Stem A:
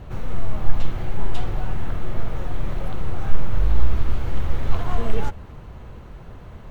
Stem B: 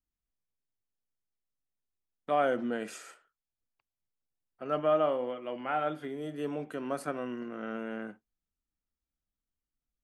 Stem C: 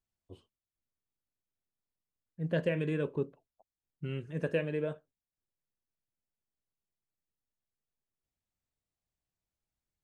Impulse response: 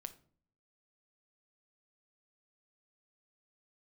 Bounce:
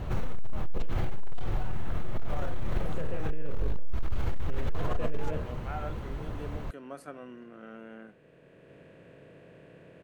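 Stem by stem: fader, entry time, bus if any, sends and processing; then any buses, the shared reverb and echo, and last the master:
+2.5 dB, 0.00 s, bus A, send −19.5 dB, no processing
−8.5 dB, 0.00 s, bus A, no send, no processing
+1.5 dB, 0.45 s, no bus, no send, compressor on every frequency bin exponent 0.4; high-shelf EQ 2,500 Hz −10.5 dB; automatic ducking −6 dB, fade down 1.95 s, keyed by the second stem
bus A: 0.0 dB, hard clipping −9.5 dBFS, distortion −10 dB; brickwall limiter −15.5 dBFS, peak gain reduction 6 dB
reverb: on, RT60 0.50 s, pre-delay 6 ms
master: brickwall limiter −19 dBFS, peak gain reduction 11 dB

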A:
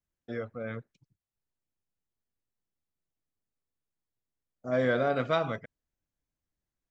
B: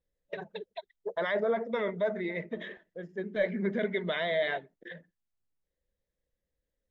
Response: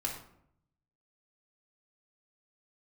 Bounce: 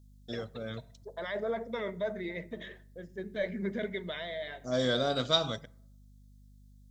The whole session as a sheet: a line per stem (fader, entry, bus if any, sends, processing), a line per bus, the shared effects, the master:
−3.5 dB, 0.00 s, send −20.5 dB, mains hum 50 Hz, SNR 20 dB; high shelf with overshoot 2,900 Hz +6.5 dB, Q 3
−5.5 dB, 0.00 s, send −19 dB, automatic ducking −10 dB, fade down 0.80 s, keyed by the first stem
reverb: on, RT60 0.70 s, pre-delay 3 ms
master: bass and treble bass +2 dB, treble +12 dB

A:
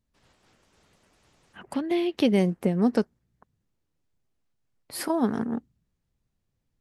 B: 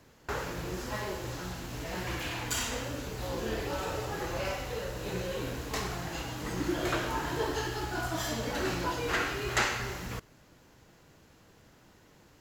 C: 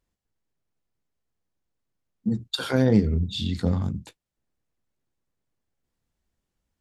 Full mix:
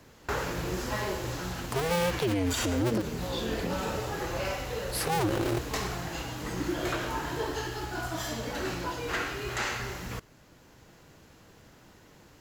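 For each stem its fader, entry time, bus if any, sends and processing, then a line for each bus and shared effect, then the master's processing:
+2.0 dB, 0.00 s, no send, sub-harmonics by changed cycles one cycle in 2, inverted
+0.5 dB, 0.00 s, no send, speech leveller 2 s; floating-point word with a short mantissa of 4 bits
−7.0 dB, 0.00 s, no send, high-pass filter 170 Hz 24 dB per octave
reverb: not used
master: brickwall limiter −20 dBFS, peak gain reduction 12.5 dB

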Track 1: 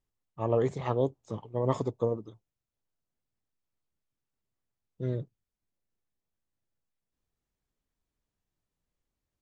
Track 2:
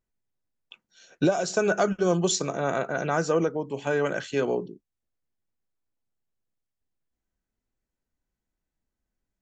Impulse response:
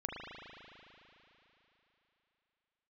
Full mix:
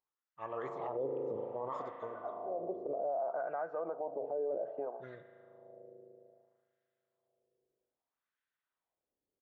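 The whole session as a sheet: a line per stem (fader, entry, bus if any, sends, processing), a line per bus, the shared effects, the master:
−1.0 dB, 0.00 s, send −3.5 dB, low-shelf EQ 160 Hz +10 dB
+1.5 dB, 0.45 s, send −21.5 dB, downward compressor, threshold −22 dBFS, peak gain reduction 6 dB; envelope-controlled low-pass 670–3,600 Hz down, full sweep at −37.5 dBFS; automatic ducking −20 dB, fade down 0.20 s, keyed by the first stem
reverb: on, RT60 3.5 s, pre-delay 37 ms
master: low-shelf EQ 270 Hz −6 dB; LFO wah 0.62 Hz 430–1,700 Hz, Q 2.3; brickwall limiter −29 dBFS, peak gain reduction 15.5 dB

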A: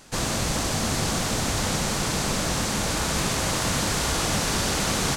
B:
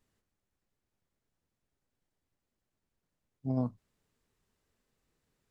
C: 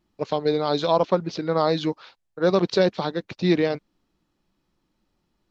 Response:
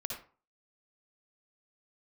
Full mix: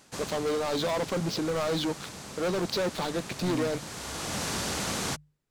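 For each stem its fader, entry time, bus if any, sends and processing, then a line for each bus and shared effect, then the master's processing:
−6.5 dB, 0.00 s, no send, high-pass filter 67 Hz; automatic ducking −10 dB, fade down 0.45 s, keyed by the third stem
−5.0 dB, 0.00 s, no send, no processing
−10.0 dB, 0.00 s, no send, leveller curve on the samples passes 5; brickwall limiter −15 dBFS, peak gain reduction 8.5 dB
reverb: not used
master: mains-hum notches 50/100/150 Hz

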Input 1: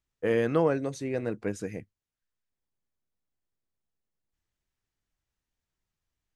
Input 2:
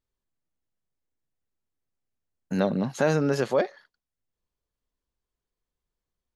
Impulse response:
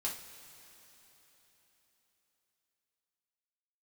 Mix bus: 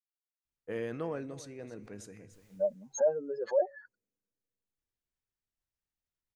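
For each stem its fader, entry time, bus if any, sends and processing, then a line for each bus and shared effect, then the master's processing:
−11.5 dB, 0.45 s, send −19 dB, echo send −18 dB, level that may fall only so fast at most 56 dB per second; automatic ducking −9 dB, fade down 1.80 s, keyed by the second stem
+2.0 dB, 0.00 s, no send, no echo send, expanding power law on the bin magnitudes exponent 3.3; downward expander −52 dBFS; high-pass with resonance 930 Hz, resonance Q 3.8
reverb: on, pre-delay 3 ms
echo: single-tap delay 291 ms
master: no processing

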